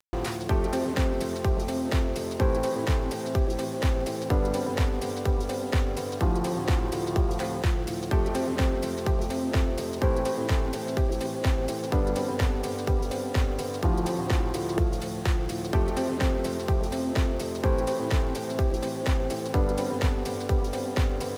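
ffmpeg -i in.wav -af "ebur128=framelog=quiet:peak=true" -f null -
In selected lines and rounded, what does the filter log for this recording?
Integrated loudness:
  I:         -27.5 LUFS
  Threshold: -37.4 LUFS
Loudness range:
  LRA:         0.5 LU
  Threshold: -47.4 LUFS
  LRA low:   -27.7 LUFS
  LRA high:  -27.2 LUFS
True peak:
  Peak:      -12.1 dBFS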